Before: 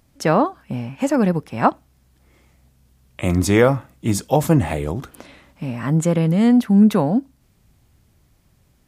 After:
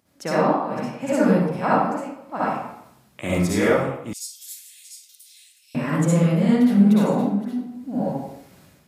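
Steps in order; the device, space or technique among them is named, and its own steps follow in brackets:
delay that plays each chunk backwards 502 ms, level −11 dB
far laptop microphone (convolution reverb RT60 0.75 s, pre-delay 53 ms, DRR −9 dB; high-pass filter 150 Hz 12 dB per octave; automatic gain control gain up to 11.5 dB)
0:04.13–0:05.75: inverse Chebyshev high-pass filter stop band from 930 Hz, stop band 70 dB
level −6 dB

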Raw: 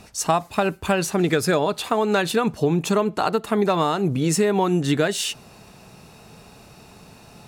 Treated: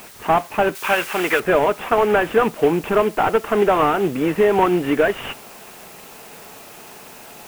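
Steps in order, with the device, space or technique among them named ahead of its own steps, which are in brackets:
army field radio (band-pass filter 330–3,000 Hz; variable-slope delta modulation 16 kbit/s; white noise bed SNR 24 dB)
0:00.75–0:01.40: tilt shelving filter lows −9 dB, about 830 Hz
level +7.5 dB

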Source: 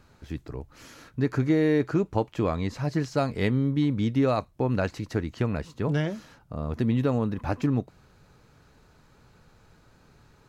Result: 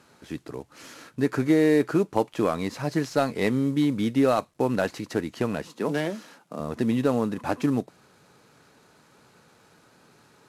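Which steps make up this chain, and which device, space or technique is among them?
early wireless headset (high-pass filter 200 Hz 12 dB per octave; variable-slope delta modulation 64 kbit/s)
0:05.67–0:06.60: high-pass filter 170 Hz 24 dB per octave
level +3.5 dB

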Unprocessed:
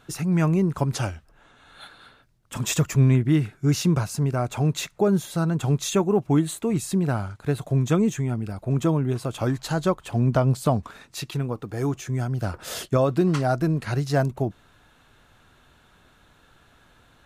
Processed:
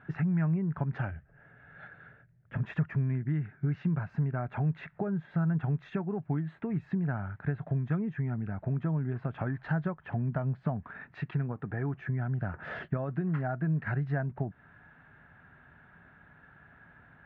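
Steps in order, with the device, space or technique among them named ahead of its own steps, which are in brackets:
0:01.11–0:02.63: octave-band graphic EQ 125/250/500/1,000/4,000/8,000 Hz +6/−6/+5/−10/−5/−11 dB
bass amplifier (downward compressor 5 to 1, threshold −30 dBFS, peak gain reduction 14.5 dB; loudspeaker in its box 68–2,000 Hz, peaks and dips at 160 Hz +6 dB, 330 Hz −6 dB, 500 Hz −7 dB, 1,100 Hz −5 dB, 1,700 Hz +8 dB)

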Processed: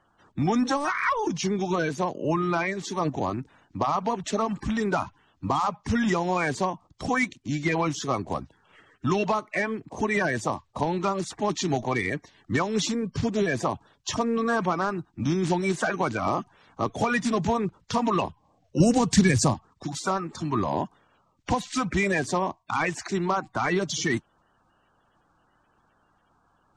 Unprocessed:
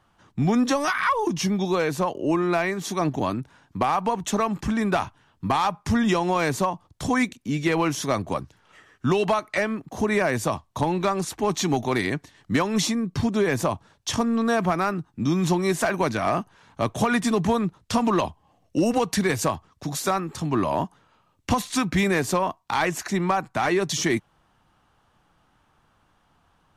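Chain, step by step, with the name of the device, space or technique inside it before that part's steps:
clip after many re-uploads (low-pass filter 7,800 Hz 24 dB per octave; spectral magnitudes quantised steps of 30 dB)
0:18.80–0:19.54: bass and treble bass +13 dB, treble +9 dB
level −2 dB

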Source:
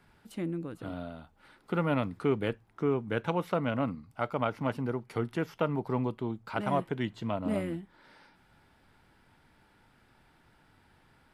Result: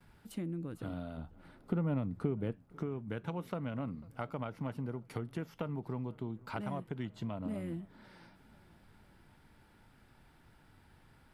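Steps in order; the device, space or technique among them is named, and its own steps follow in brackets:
dynamic equaliser 170 Hz, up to +3 dB, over −40 dBFS, Q 1.1
ASMR close-microphone chain (low-shelf EQ 200 Hz +7 dB; downward compressor 6 to 1, threshold −33 dBFS, peak gain reduction 13.5 dB; high-shelf EQ 9,300 Hz +6.5 dB)
noise gate with hold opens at −54 dBFS
0:01.17–0:02.52: tilt shelving filter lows +5.5 dB
feedback echo with a low-pass in the loop 495 ms, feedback 62%, low-pass 2,800 Hz, level −24 dB
level −2.5 dB

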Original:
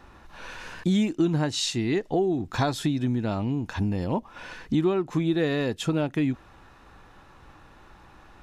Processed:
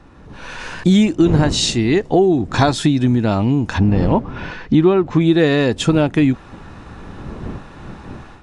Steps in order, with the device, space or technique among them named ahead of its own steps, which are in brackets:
0:03.78–0:05.21: high-frequency loss of the air 140 metres
smartphone video outdoors (wind on the microphone 230 Hz −40 dBFS; automatic gain control gain up to 11 dB; level +1 dB; AAC 96 kbit/s 22,050 Hz)

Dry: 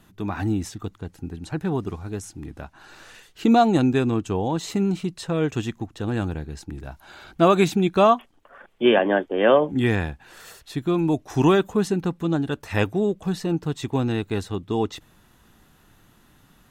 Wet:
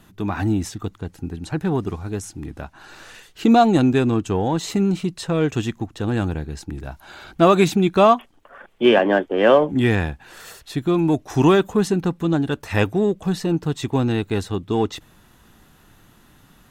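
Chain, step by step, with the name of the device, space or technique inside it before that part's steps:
parallel distortion (in parallel at −12.5 dB: hard clipping −23 dBFS, distortion −5 dB)
on the sum: level +2 dB

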